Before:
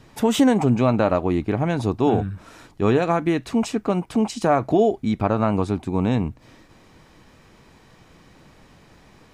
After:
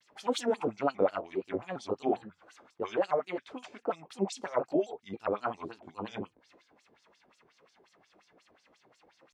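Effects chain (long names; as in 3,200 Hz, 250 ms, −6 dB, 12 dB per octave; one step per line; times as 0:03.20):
multi-voice chorus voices 2, 1.3 Hz, delay 19 ms, depth 3 ms
auto-filter band-pass sine 5.6 Hz 420–6,500 Hz
pitch modulation by a square or saw wave square 3.7 Hz, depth 160 cents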